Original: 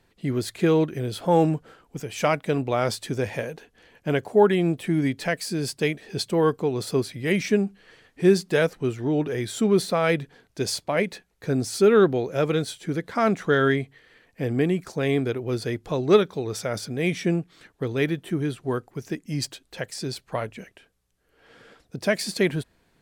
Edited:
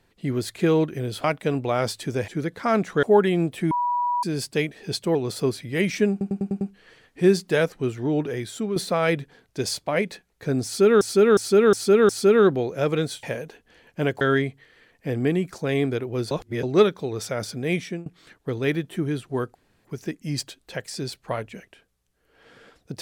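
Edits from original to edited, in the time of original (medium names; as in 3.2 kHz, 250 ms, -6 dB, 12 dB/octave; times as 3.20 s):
1.24–2.27 s: delete
3.31–4.29 s: swap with 12.80–13.55 s
4.97–5.49 s: bleep 973 Hz -20.5 dBFS
6.41–6.66 s: delete
7.62 s: stutter 0.10 s, 6 plays
9.23–9.77 s: fade out, to -9 dB
11.66–12.02 s: loop, 5 plays
15.65–15.97 s: reverse
17.07–17.40 s: fade out, to -23 dB
18.89 s: insert room tone 0.30 s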